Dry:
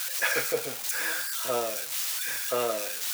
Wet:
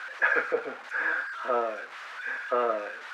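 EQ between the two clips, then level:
high-pass filter 210 Hz 24 dB per octave
low-pass with resonance 1,500 Hz, resonance Q 2
0.0 dB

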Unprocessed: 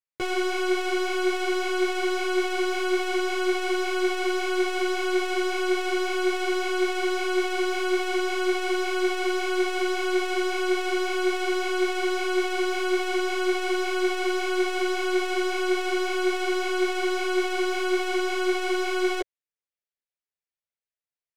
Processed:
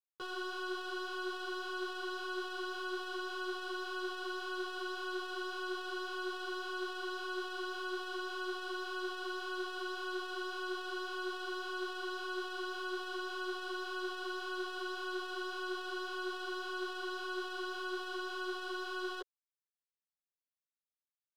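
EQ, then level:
high-frequency loss of the air 400 metres
first-order pre-emphasis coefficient 0.97
phaser with its sweep stopped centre 440 Hz, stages 8
+11.0 dB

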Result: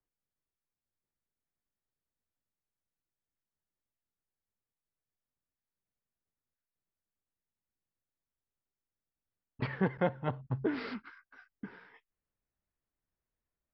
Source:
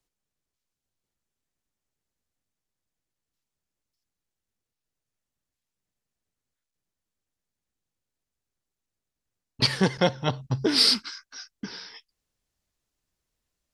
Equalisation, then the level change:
low-pass filter 2,100 Hz 24 dB per octave
−7.5 dB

